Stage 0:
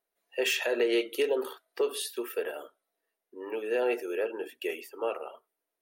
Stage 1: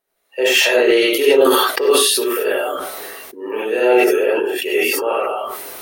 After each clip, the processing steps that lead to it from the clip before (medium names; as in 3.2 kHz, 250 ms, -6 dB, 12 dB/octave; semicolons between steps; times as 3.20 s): gated-style reverb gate 120 ms rising, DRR -7 dB; decay stretcher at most 25 dB/s; trim +6.5 dB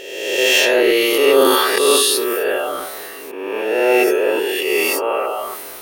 reverse spectral sustain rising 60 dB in 1.26 s; trim -3 dB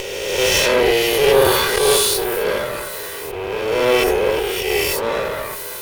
comb filter that takes the minimum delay 2 ms; upward compressor, threshold -21 dBFS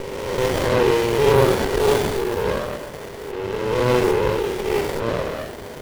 sliding maximum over 33 samples